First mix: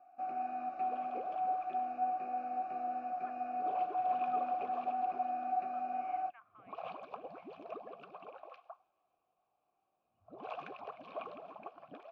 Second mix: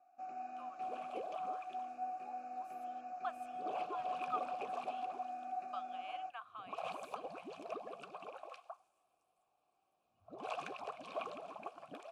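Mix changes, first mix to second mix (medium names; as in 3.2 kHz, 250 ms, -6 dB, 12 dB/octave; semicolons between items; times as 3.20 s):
speech: remove four-pole ladder low-pass 2.3 kHz, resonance 75%; first sound -8.5 dB; master: remove distance through air 280 m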